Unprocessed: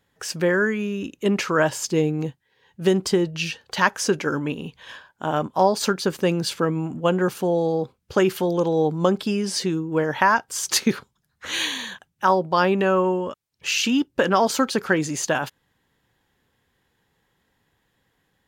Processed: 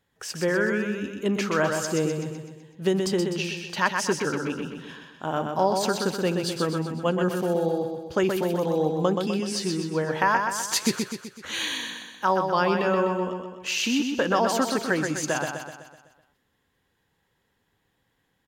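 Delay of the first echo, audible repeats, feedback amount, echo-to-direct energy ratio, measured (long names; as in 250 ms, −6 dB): 126 ms, 6, 52%, −3.5 dB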